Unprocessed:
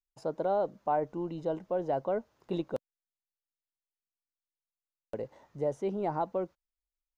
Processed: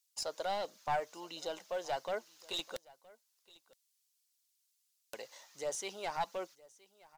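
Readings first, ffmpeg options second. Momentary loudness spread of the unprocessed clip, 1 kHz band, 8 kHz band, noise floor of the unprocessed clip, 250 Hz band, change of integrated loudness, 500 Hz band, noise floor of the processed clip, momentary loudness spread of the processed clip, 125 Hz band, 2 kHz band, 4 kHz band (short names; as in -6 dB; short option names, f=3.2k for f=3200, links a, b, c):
10 LU, -4.0 dB, n/a, under -85 dBFS, -16.0 dB, -6.0 dB, -8.0 dB, -79 dBFS, 12 LU, -15.5 dB, +5.0 dB, +14.5 dB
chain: -af "bandpass=f=5.1k:t=q:w=1:csg=0,aemphasis=mode=production:type=bsi,aeval=exprs='clip(val(0),-1,0.00501)':c=same,aphaser=in_gain=1:out_gain=1:delay=2:decay=0.28:speed=1.4:type=triangular,aecho=1:1:968:0.0708,volume=13dB"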